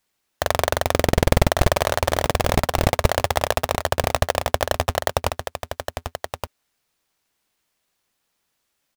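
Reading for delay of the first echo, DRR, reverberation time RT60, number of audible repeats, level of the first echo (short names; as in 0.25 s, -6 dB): 1.171 s, none, none, 1, -7.5 dB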